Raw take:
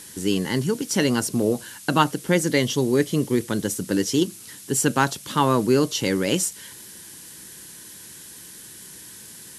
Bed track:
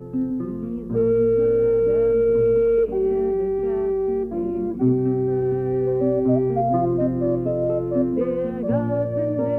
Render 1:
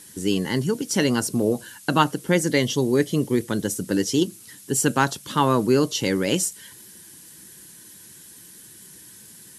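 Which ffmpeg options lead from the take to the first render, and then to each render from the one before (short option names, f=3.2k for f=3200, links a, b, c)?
-af "afftdn=nr=6:nf=-43"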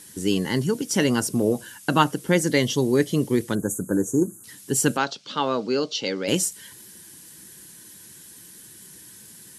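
-filter_complex "[0:a]asettb=1/sr,asplit=3[a][b][c];[a]atrim=end=0.854[d];[b]atrim=start=0.85:end=2.18,asetpts=PTS-STARTPTS,afade=t=in:d=0.004:c=qsin,afade=t=out:st=1.326:d=0.004:c=qsin,bandreject=f=4.2k:w=12[e];[c]atrim=start=2.176[f];[d][e]acrossfade=d=0.004:c1=hsin:c2=qsin[g];[g][f]acrossfade=d=0.004:c1=qsin:c2=hsin,asettb=1/sr,asplit=3[h][i][j];[h]atrim=end=3.554[k];[i]atrim=start=3.55:end=4.44,asetpts=PTS-STARTPTS,afade=t=in:d=0.004:c=qsin,afade=t=out:st=0.886:d=0.004:c=qsin,asuperstop=centerf=3300:order=20:qfactor=0.69[l];[j]atrim=start=4.436[m];[k][l]acrossfade=d=0.004:c1=hsin:c2=qsin[n];[n][m]acrossfade=d=0.004:c1=qsin:c2=hsin,asplit=3[o][p][q];[o]afade=t=out:st=4.96:d=0.02[r];[p]highpass=310,equalizer=f=340:t=q:w=4:g=-8,equalizer=f=1k:t=q:w=4:g=-8,equalizer=f=1.8k:t=q:w=4:g=-8,equalizer=f=4.5k:t=q:w=4:g=3,lowpass=f=5.3k:w=0.5412,lowpass=f=5.3k:w=1.3066,afade=t=in:st=4.96:d=0.02,afade=t=out:st=6.27:d=0.02[s];[q]afade=t=in:st=6.27:d=0.02[t];[r][s][t]amix=inputs=3:normalize=0"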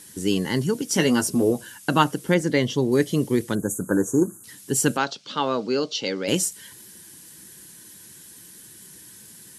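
-filter_complex "[0:a]asettb=1/sr,asplit=3[a][b][c];[a]atrim=end=0.914[d];[b]atrim=start=0.91:end=1.51,asetpts=PTS-STARTPTS,afade=t=in:d=0.004:c=qsin,afade=t=out:st=0.596:d=0.004:c=qsin,asplit=2[e][f];[f]adelay=12,volume=-5dB[g];[e][g]amix=inputs=2:normalize=0,atrim=end_sample=26460[h];[c]atrim=start=1.506[i];[d][h]acrossfade=d=0.004:c1=hsin:c2=qsin[j];[j][i]acrossfade=d=0.004:c1=qsin:c2=hsin,asettb=1/sr,asplit=3[k][l][m];[k]atrim=end=2.344[n];[l]atrim=start=2.34:end=2.92,asetpts=PTS-STARTPTS,afade=t=in:d=0.004:c=qsin,afade=t=out:st=0.576:d=0.004:c=qsin,lowpass=f=3.1k:p=1[o];[m]atrim=start=2.916[p];[n][o]acrossfade=d=0.004:c1=hsin:c2=qsin[q];[q][p]acrossfade=d=0.004:c1=qsin:c2=hsin,asettb=1/sr,asplit=3[r][s][t];[r]atrim=end=3.804[u];[s]atrim=start=3.8:end=4.38,asetpts=PTS-STARTPTS,afade=t=in:d=0.004:c=qsin,afade=t=out:st=0.576:d=0.004:c=qsin,equalizer=f=1.2k:t=o:w=1.7:g=9[v];[t]atrim=start=4.376[w];[u][v]acrossfade=d=0.004:c1=hsin:c2=qsin[x];[x][w]acrossfade=d=0.004:c1=qsin:c2=hsin"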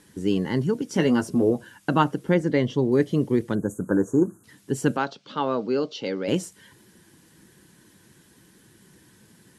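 -af "lowpass=f=1.4k:p=1"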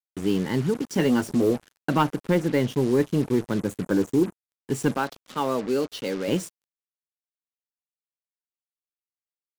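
-af "asoftclip=type=tanh:threshold=-9.5dB,acrusher=bits=5:mix=0:aa=0.5"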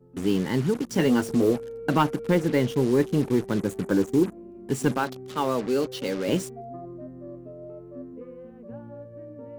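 -filter_complex "[1:a]volume=-19dB[a];[0:a][a]amix=inputs=2:normalize=0"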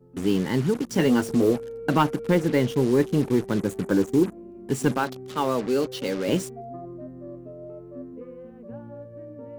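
-af "volume=1dB"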